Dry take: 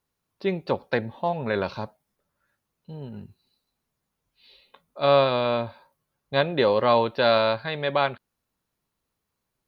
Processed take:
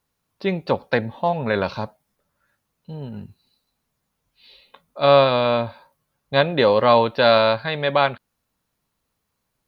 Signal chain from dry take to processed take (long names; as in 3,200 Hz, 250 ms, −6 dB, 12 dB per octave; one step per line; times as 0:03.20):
parametric band 370 Hz −4.5 dB 0.29 octaves
level +5 dB